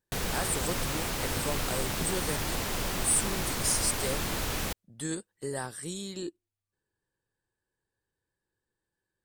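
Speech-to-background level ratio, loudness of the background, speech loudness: -1.5 dB, -31.5 LUFS, -33.0 LUFS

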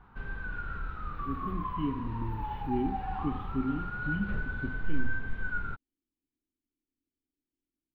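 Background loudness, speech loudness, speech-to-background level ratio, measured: -37.5 LUFS, -37.0 LUFS, 0.5 dB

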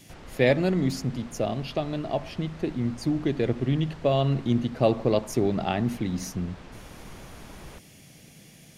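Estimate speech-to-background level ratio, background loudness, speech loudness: 19.5 dB, -46.5 LUFS, -27.0 LUFS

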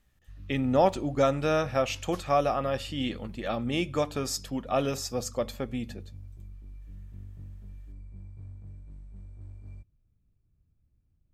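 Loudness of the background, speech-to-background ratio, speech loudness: -47.5 LUFS, 18.5 dB, -29.0 LUFS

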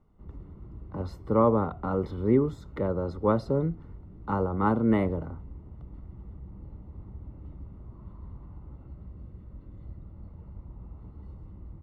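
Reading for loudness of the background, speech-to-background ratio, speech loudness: -46.5 LUFS, 19.0 dB, -27.5 LUFS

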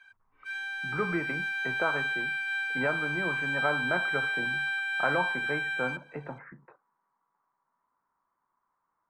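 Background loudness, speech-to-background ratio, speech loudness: -30.0 LUFS, -5.0 dB, -35.0 LUFS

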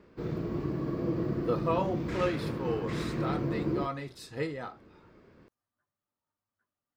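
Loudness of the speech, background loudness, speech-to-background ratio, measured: -35.5 LUFS, -33.5 LUFS, -2.0 dB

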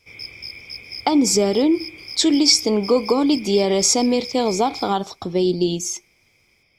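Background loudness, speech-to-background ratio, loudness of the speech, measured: -33.5 LUFS, 14.5 dB, -19.0 LUFS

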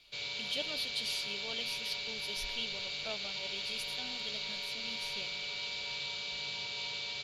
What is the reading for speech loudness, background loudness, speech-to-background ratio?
-41.5 LUFS, -36.5 LUFS, -5.0 dB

